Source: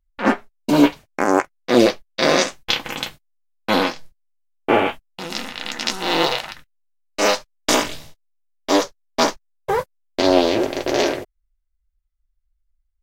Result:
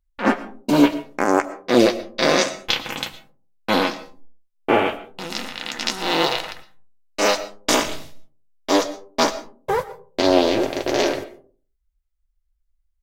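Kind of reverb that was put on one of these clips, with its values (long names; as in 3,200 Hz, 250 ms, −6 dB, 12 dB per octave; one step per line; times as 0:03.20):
comb and all-pass reverb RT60 0.42 s, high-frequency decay 0.35×, pre-delay 75 ms, DRR 15 dB
level −1 dB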